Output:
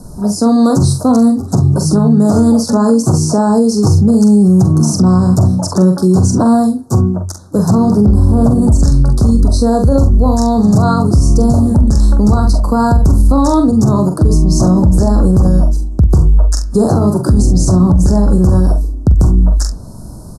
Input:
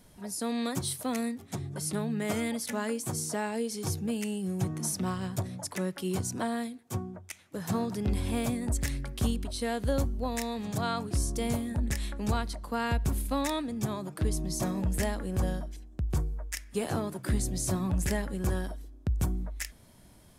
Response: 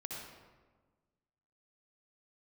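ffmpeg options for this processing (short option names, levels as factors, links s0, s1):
-filter_complex "[0:a]asettb=1/sr,asplit=3[s0][s1][s2];[s0]atrim=end=7.904[s3];[s1]atrim=start=7.9:end=8.62,asetpts=PTS-STARTPTS,afade=t=in:d=0.004:c=qsin,afade=t=out:st=0.716:d=0.004:c=qsin,acrossover=split=3000[s4][s5];[s5]acompressor=threshold=0.00224:ratio=4:attack=1:release=60[s6];[s4][s6]amix=inputs=2:normalize=0[s7];[s2]atrim=start=8.616[s8];[s3][s7]acrossfade=d=0.004:c1=hsin:c2=qsin[s9];[s9][s8]acrossfade=d=0.004:c1=qsin:c2=hsin,lowpass=f=12000:w=0.5412,lowpass=f=12000:w=1.3066,lowshelf=f=320:g=9,acrossover=split=100|7300[s10][s11][s12];[s12]acompressor=threshold=0.00158:ratio=6[s13];[s10][s11][s13]amix=inputs=3:normalize=0,asuperstop=centerf=2500:order=8:qfactor=0.77,asplit=2[s14][s15];[s15]aecho=0:1:44|67:0.473|0.141[s16];[s14][s16]amix=inputs=2:normalize=0,alimiter=level_in=10:limit=0.891:release=50:level=0:latency=1,volume=0.891"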